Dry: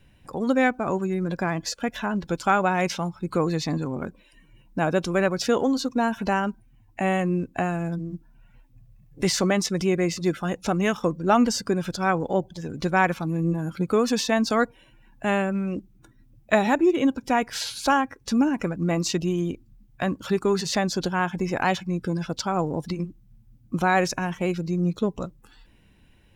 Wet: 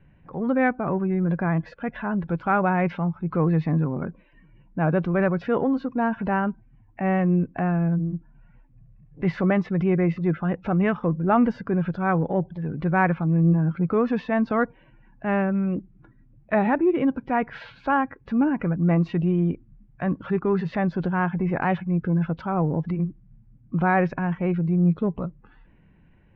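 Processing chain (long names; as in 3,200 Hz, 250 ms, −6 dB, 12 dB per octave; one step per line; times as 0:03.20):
low-pass filter 2,200 Hz 24 dB per octave
parametric band 160 Hz +8 dB 0.45 octaves
transient designer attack −4 dB, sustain +1 dB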